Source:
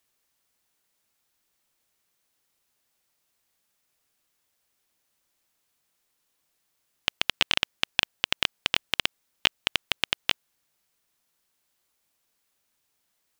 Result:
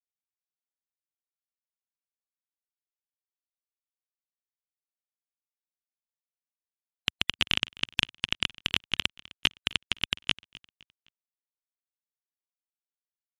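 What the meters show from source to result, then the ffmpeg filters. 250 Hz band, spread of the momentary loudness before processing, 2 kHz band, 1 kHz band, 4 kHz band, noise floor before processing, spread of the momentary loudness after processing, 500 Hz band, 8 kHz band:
+1.5 dB, 6 LU, -2.5 dB, -6.0 dB, -1.5 dB, -76 dBFS, 6 LU, -6.5 dB, -3.0 dB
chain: -filter_complex "[0:a]highpass=f=140:p=1,asplit=2[a][b];[b]highpass=f=720:p=1,volume=11dB,asoftclip=type=tanh:threshold=-1.5dB[c];[a][c]amix=inputs=2:normalize=0,lowpass=f=5.4k:p=1,volume=-6dB,afftfilt=real='re*gte(hypot(re,im),0.00891)':imag='im*gte(hypot(re,im),0.00891)':win_size=1024:overlap=0.75,asubboost=boost=11:cutoff=180,aecho=1:1:257|514|771:0.0794|0.0294|0.0109,volume=-3dB"

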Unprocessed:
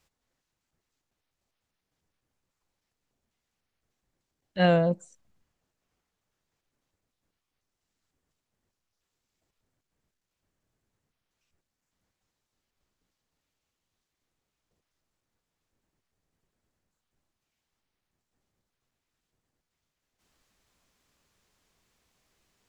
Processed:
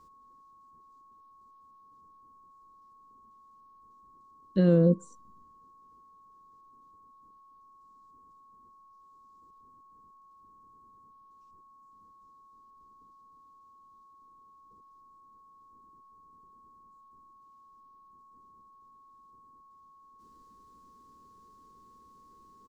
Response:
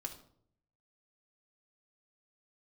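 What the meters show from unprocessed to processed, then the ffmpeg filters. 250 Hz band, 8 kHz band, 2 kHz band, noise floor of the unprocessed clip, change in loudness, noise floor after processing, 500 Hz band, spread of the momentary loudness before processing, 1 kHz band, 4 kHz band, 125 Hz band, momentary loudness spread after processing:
+3.5 dB, n/a, -14.5 dB, -85 dBFS, -0.5 dB, -58 dBFS, -1.0 dB, 15 LU, -7.5 dB, under -10 dB, +3.0 dB, 11 LU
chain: -af "lowshelf=f=180:g=7,alimiter=limit=-21.5dB:level=0:latency=1:release=196,firequalizer=gain_entry='entry(120,0);entry(230,12);entry(330,11);entry(480,9);entry(690,-15);entry(1200,-3);entry(2300,-13);entry(4300,-2)':delay=0.05:min_phase=1,aeval=exprs='val(0)+0.00141*sin(2*PI*1100*n/s)':c=same,volume=2dB"

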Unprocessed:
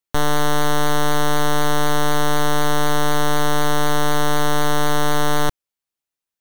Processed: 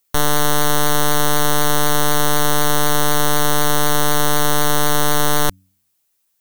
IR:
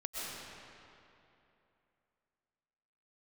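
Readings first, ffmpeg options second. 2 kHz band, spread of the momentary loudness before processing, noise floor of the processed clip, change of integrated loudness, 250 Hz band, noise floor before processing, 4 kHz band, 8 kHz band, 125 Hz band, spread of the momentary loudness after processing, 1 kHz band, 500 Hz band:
+1.5 dB, 0 LU, -67 dBFS, +3.5 dB, +0.5 dB, under -85 dBFS, +4.0 dB, +7.5 dB, +1.0 dB, 0 LU, +1.0 dB, +1.0 dB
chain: -af "apsyclip=24.5dB,crystalizer=i=1.5:c=0,bandreject=f=93.59:t=h:w=4,bandreject=f=187.18:t=h:w=4,bandreject=f=280.77:t=h:w=4,volume=-13.5dB"

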